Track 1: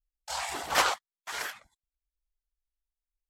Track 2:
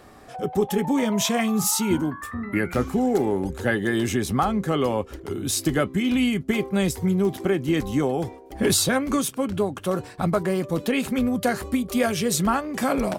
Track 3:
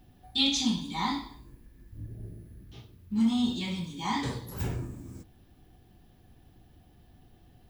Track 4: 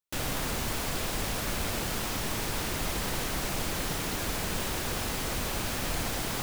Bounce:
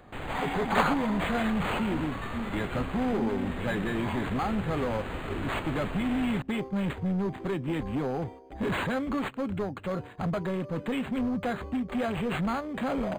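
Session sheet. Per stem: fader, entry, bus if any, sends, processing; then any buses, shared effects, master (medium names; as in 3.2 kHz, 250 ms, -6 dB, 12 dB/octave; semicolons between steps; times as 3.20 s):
+2.0 dB, 0.00 s, no bus, no send, low-pass that closes with the level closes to 2.8 kHz
-3.5 dB, 0.00 s, no bus, no send, peaking EQ 360 Hz -4.5 dB 0.43 oct; overload inside the chain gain 22 dB
-2.0 dB, 0.00 s, bus A, no send, none
-3.0 dB, 0.00 s, bus A, no send, none
bus A: 0.0 dB, peak limiter -25.5 dBFS, peak gain reduction 10.5 dB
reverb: none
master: decimation joined by straight lines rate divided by 8×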